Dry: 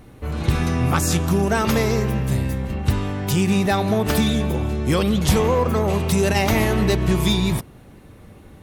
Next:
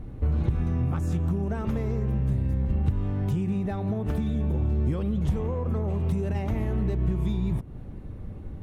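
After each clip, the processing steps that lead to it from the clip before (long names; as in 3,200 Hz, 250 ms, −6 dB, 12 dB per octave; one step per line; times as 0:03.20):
dynamic equaliser 4,700 Hz, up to −6 dB, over −44 dBFS, Q 2.2
downward compressor 12 to 1, threshold −27 dBFS, peak gain reduction 15.5 dB
spectral tilt −3.5 dB per octave
level −5 dB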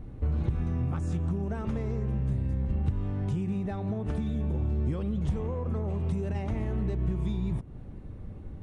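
downsampling to 22,050 Hz
level −3.5 dB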